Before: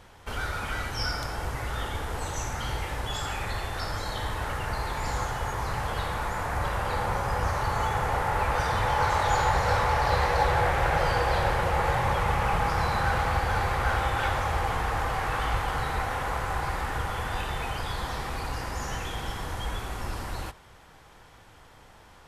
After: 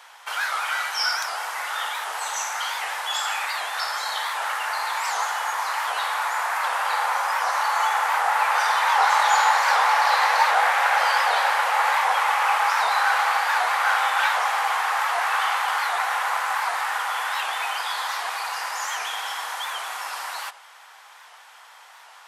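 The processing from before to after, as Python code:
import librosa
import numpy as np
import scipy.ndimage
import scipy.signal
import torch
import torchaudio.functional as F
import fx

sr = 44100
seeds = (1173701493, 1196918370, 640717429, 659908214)

y = scipy.signal.sosfilt(scipy.signal.butter(4, 800.0, 'highpass', fs=sr, output='sos'), x)
y = fx.record_warp(y, sr, rpm=78.0, depth_cents=160.0)
y = F.gain(torch.from_numpy(y), 8.5).numpy()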